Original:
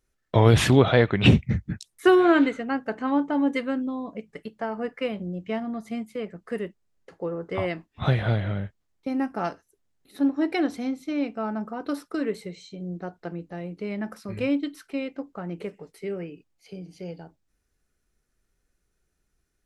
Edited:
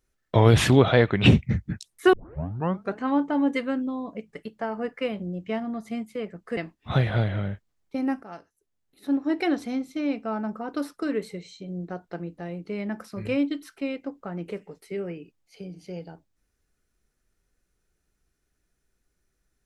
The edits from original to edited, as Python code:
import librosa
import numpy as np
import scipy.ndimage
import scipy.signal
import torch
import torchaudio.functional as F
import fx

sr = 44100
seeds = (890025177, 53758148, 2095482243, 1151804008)

y = fx.edit(x, sr, fx.tape_start(start_s=2.13, length_s=0.85),
    fx.cut(start_s=6.57, length_s=1.12),
    fx.fade_in_from(start_s=9.35, length_s=1.2, floor_db=-15.5), tone=tone)